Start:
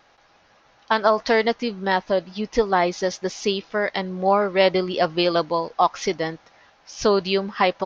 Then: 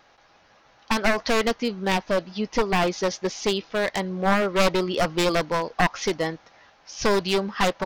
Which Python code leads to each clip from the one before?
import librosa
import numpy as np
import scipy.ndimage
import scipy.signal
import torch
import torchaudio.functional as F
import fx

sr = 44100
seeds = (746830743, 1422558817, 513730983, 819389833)

y = np.minimum(x, 2.0 * 10.0 ** (-18.0 / 20.0) - x)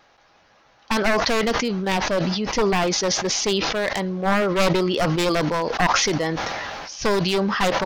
y = fx.sustainer(x, sr, db_per_s=20.0)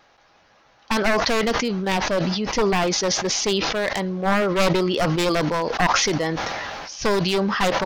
y = x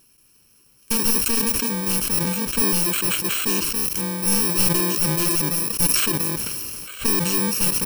y = fx.bit_reversed(x, sr, seeds[0], block=64)